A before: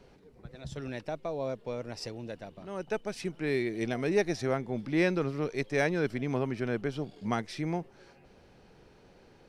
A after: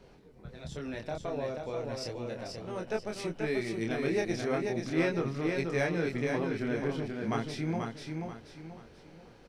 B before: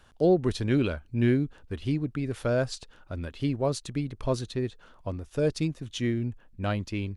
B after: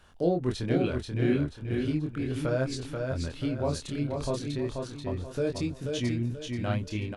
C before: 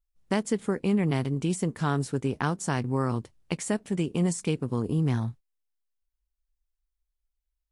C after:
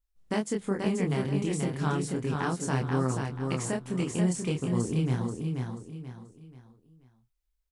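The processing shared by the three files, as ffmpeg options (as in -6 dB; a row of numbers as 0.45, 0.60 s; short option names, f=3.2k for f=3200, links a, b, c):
-filter_complex "[0:a]asplit=2[a][b];[b]acompressor=threshold=-35dB:ratio=6,volume=-1.5dB[c];[a][c]amix=inputs=2:normalize=0,flanger=delay=22.5:depth=5.5:speed=0.36,aecho=1:1:484|968|1452|1936:0.596|0.208|0.073|0.0255,volume=-1.5dB"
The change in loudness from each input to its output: -1.0, -1.5, -1.5 LU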